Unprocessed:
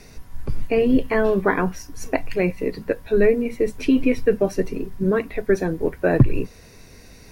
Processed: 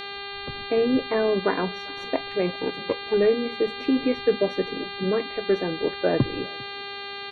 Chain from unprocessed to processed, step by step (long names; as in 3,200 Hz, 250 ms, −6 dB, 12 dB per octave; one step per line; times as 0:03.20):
0:02.46–0:03.14: lower of the sound and its delayed copy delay 0.31 ms
resonant band-pass 530 Hz, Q 0.55
on a send: single-tap delay 398 ms −24 dB
on the sum: hum with harmonics 400 Hz, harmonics 11, −33 dBFS −1 dB per octave
level −2.5 dB